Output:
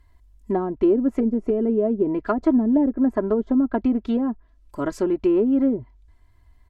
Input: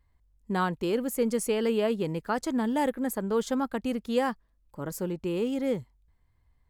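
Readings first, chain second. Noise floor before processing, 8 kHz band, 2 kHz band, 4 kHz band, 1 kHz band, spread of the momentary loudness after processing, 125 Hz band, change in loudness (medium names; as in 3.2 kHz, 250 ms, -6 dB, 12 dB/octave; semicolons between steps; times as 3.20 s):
-68 dBFS, under -10 dB, -4.0 dB, under -10 dB, 0.0 dB, 9 LU, +1.0 dB, +7.5 dB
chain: low-pass that closes with the level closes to 390 Hz, closed at -23.5 dBFS; comb 3 ms, depth 77%; trim +8.5 dB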